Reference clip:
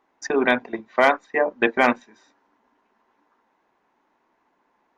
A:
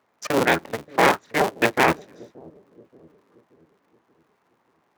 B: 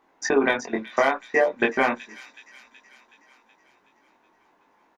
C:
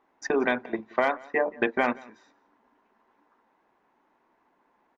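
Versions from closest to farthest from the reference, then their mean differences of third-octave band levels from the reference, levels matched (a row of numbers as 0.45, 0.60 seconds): C, B, A; 3.0, 4.5, 10.0 decibels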